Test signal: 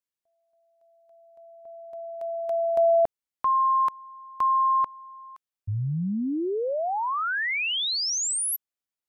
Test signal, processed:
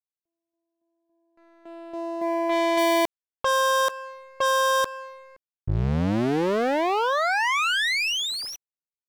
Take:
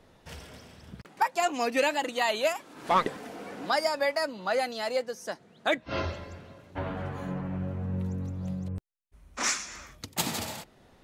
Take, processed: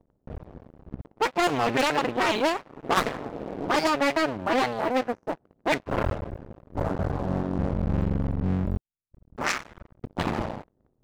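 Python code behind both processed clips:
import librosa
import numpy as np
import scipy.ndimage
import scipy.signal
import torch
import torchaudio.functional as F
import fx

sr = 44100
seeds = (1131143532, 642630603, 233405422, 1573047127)

y = fx.cycle_switch(x, sr, every=2, mode='muted')
y = fx.env_lowpass(y, sr, base_hz=380.0, full_db=-21.0)
y = fx.leveller(y, sr, passes=3)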